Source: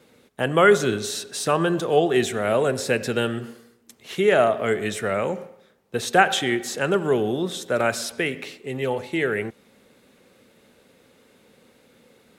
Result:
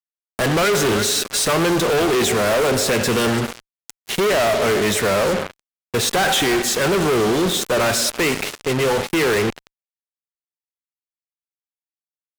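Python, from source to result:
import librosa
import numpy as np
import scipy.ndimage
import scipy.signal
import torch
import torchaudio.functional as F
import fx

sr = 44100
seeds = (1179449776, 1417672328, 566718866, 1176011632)

y = fx.echo_thinned(x, sr, ms=339, feedback_pct=36, hz=320.0, wet_db=-20.0)
y = fx.fuzz(y, sr, gain_db=39.0, gate_db=-35.0)
y = F.gain(torch.from_numpy(y), -2.5).numpy()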